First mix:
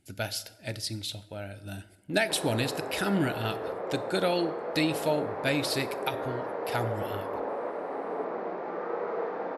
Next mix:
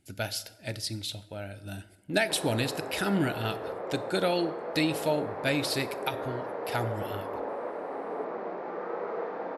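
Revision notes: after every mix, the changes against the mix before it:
background: send −7.5 dB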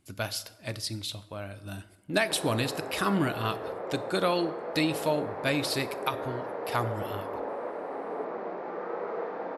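speech: remove Butterworth band-reject 1,100 Hz, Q 3.1

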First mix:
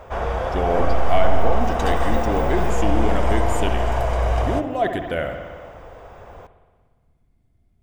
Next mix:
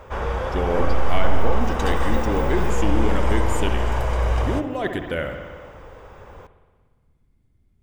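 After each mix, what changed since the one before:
master: add parametric band 690 Hz −12.5 dB 0.22 octaves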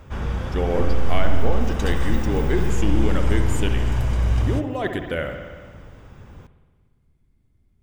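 background: add octave-band graphic EQ 125/250/500/1,000/2,000 Hz +7/+6/−10/−7/−3 dB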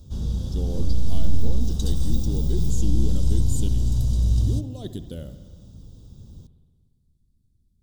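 speech: send −8.0 dB
master: add drawn EQ curve 210 Hz 0 dB, 2,200 Hz −30 dB, 3,800 Hz +3 dB

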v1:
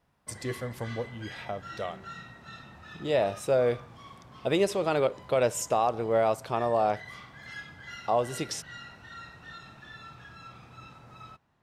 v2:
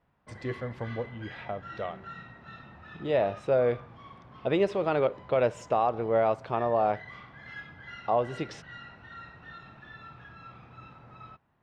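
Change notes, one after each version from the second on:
master: add low-pass filter 2,700 Hz 12 dB per octave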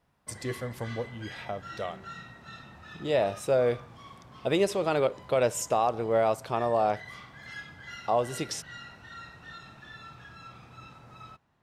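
master: remove low-pass filter 2,700 Hz 12 dB per octave

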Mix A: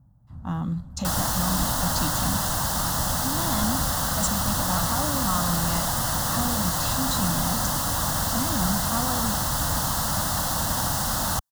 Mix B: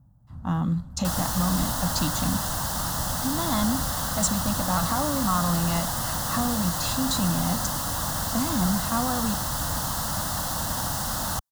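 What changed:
speech +3.0 dB
second sound −3.0 dB

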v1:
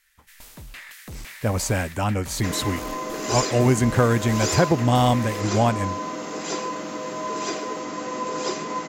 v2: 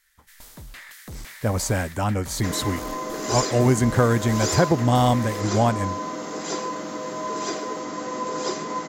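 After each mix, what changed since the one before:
master: add parametric band 2,600 Hz −6 dB 0.42 octaves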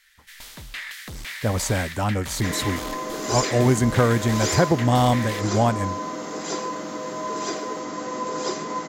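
first sound: add parametric band 2,900 Hz +11.5 dB 2.1 octaves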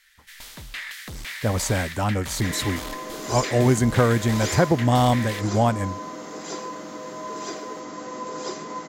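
second sound −4.5 dB

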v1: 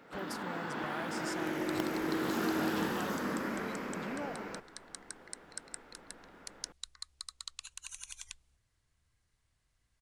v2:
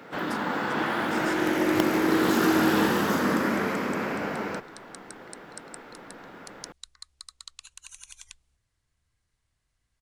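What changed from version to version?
first sound +11.0 dB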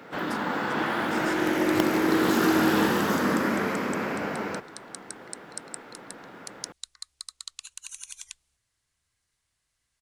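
second sound: add spectral tilt +2 dB per octave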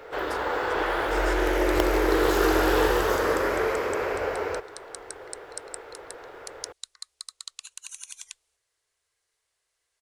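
first sound: remove high-pass filter 150 Hz 24 dB per octave
master: add low shelf with overshoot 310 Hz −11 dB, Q 3

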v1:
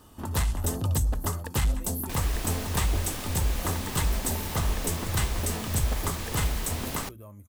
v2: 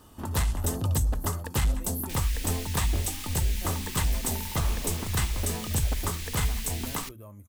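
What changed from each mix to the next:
second sound: add inverse Chebyshev band-stop filter 120–660 Hz, stop band 60 dB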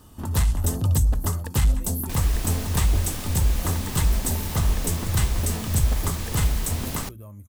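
second sound: remove inverse Chebyshev band-stop filter 120–660 Hz, stop band 60 dB
master: add bass and treble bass +6 dB, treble +3 dB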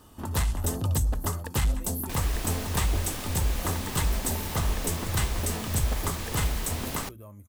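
master: add bass and treble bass −6 dB, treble −3 dB

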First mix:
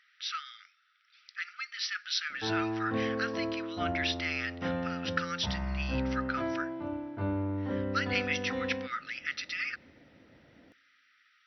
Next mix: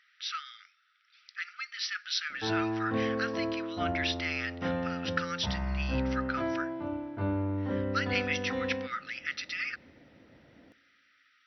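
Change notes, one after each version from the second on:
background: send +10.0 dB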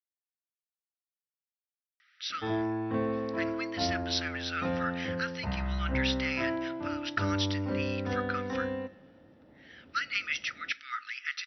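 speech: entry +2.00 s

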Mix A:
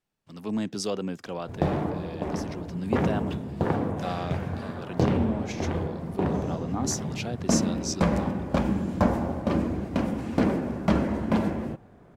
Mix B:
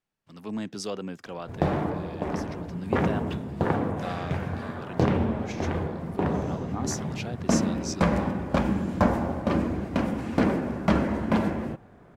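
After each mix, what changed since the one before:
speech −4.0 dB
master: add parametric band 1,600 Hz +3.5 dB 1.8 octaves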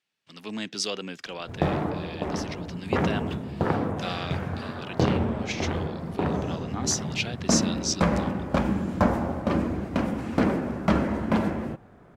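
speech: add meter weighting curve D
background: remove notch filter 1,300 Hz, Q 23

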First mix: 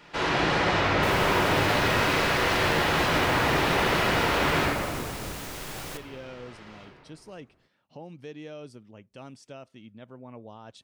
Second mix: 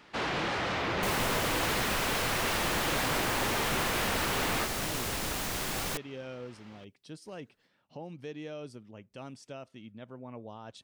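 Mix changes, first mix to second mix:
second sound +5.5 dB
reverb: off

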